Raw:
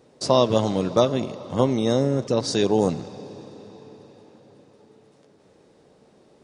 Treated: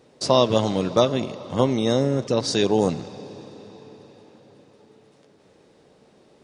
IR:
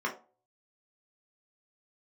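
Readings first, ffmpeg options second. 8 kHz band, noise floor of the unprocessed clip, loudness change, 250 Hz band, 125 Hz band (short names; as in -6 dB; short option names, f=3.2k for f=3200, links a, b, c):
+1.0 dB, -57 dBFS, +0.5 dB, 0.0 dB, 0.0 dB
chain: -af "equalizer=f=2.8k:t=o:w=1.8:g=3.5"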